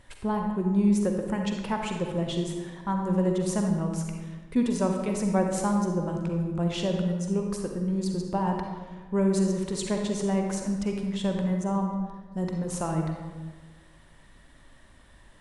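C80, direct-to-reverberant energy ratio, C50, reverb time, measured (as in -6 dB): 5.5 dB, 2.5 dB, 3.0 dB, 1.4 s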